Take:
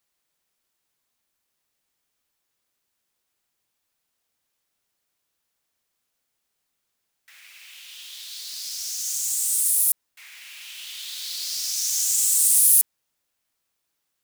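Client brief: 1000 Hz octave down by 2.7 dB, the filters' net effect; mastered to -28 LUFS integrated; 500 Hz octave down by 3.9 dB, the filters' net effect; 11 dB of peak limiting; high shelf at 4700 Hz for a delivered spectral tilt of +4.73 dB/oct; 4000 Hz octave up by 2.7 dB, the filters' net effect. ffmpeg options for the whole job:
-af "equalizer=f=500:t=o:g=-4,equalizer=f=1k:t=o:g=-3,equalizer=f=4k:t=o:g=7.5,highshelf=f=4.7k:g=-6.5,alimiter=limit=-19dB:level=0:latency=1"

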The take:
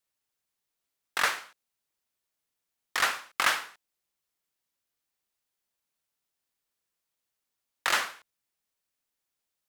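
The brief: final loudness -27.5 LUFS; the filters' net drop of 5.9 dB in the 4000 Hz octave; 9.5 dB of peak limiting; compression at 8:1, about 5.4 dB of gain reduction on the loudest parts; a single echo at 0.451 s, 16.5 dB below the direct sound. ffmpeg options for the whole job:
-af "equalizer=f=4k:t=o:g=-8,acompressor=threshold=-27dB:ratio=8,alimiter=limit=-23dB:level=0:latency=1,aecho=1:1:451:0.15,volume=10.5dB"

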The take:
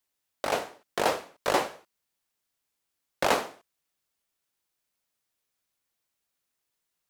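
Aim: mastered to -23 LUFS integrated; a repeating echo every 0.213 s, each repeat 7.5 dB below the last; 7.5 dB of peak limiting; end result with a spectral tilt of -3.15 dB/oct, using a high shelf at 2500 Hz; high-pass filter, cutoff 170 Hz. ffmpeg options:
-af "highpass=170,highshelf=f=2.5k:g=-8,alimiter=limit=-17.5dB:level=0:latency=1,aecho=1:1:213|426|639|852|1065:0.422|0.177|0.0744|0.0312|0.0131,volume=10.5dB"

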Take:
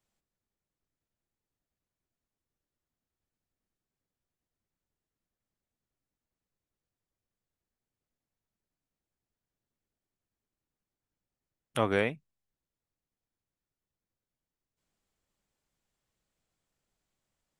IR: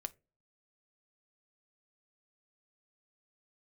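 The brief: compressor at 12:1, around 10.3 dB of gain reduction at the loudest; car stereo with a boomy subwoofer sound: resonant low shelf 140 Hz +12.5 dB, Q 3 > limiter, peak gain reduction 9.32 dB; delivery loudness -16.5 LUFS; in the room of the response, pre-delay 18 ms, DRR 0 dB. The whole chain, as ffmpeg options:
-filter_complex "[0:a]acompressor=threshold=-31dB:ratio=12,asplit=2[a][b];[1:a]atrim=start_sample=2205,adelay=18[c];[b][c]afir=irnorm=-1:irlink=0,volume=2.5dB[d];[a][d]amix=inputs=2:normalize=0,lowshelf=f=140:t=q:w=3:g=12.5,volume=21.5dB,alimiter=limit=-5.5dB:level=0:latency=1"

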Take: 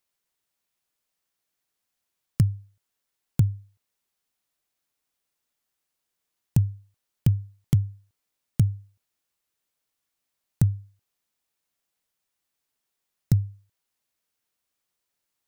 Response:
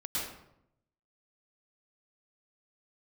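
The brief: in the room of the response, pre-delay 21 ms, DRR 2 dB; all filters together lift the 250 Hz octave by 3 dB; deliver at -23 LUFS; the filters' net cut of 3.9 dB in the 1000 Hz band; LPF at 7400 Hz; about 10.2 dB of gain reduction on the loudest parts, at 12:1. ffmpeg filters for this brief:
-filter_complex "[0:a]lowpass=7.4k,equalizer=f=250:t=o:g=6,equalizer=f=1k:t=o:g=-6,acompressor=threshold=-23dB:ratio=12,asplit=2[a][b];[1:a]atrim=start_sample=2205,adelay=21[c];[b][c]afir=irnorm=-1:irlink=0,volume=-6.5dB[d];[a][d]amix=inputs=2:normalize=0,volume=9.5dB"

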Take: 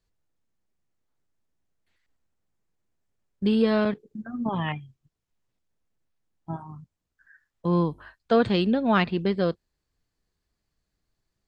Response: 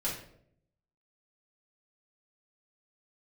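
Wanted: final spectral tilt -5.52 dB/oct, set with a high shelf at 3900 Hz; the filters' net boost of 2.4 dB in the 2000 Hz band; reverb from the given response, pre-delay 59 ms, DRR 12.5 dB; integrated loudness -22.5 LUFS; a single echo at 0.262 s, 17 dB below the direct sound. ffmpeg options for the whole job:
-filter_complex "[0:a]equalizer=f=2k:t=o:g=4.5,highshelf=f=3.9k:g=-6,aecho=1:1:262:0.141,asplit=2[a][b];[1:a]atrim=start_sample=2205,adelay=59[c];[b][c]afir=irnorm=-1:irlink=0,volume=-17dB[d];[a][d]amix=inputs=2:normalize=0,volume=2dB"

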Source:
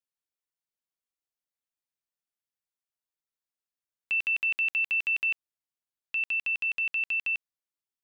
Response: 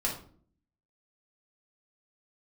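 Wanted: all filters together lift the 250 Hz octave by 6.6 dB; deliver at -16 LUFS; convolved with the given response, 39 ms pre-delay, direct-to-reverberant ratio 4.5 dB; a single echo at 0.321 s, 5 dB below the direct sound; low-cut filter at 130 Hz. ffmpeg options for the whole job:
-filter_complex "[0:a]highpass=130,equalizer=f=250:t=o:g=9,aecho=1:1:321:0.562,asplit=2[a][b];[1:a]atrim=start_sample=2205,adelay=39[c];[b][c]afir=irnorm=-1:irlink=0,volume=-10.5dB[d];[a][d]amix=inputs=2:normalize=0,volume=10.5dB"

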